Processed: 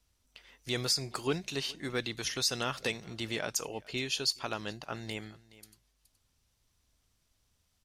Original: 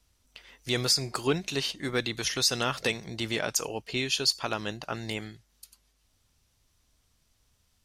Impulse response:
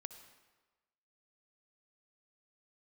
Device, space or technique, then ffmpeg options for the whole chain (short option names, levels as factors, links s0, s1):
ducked delay: -filter_complex "[0:a]asplit=3[s0][s1][s2];[s1]adelay=421,volume=0.376[s3];[s2]apad=whole_len=364606[s4];[s3][s4]sidechaincompress=threshold=0.00708:ratio=4:attack=16:release=1220[s5];[s0][s5]amix=inputs=2:normalize=0,volume=0.562"